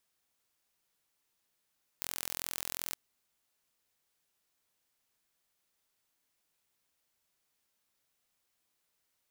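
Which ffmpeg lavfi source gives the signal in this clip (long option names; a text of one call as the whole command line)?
ffmpeg -f lavfi -i "aevalsrc='0.335*eq(mod(n,1033),0)':duration=0.92:sample_rate=44100" out.wav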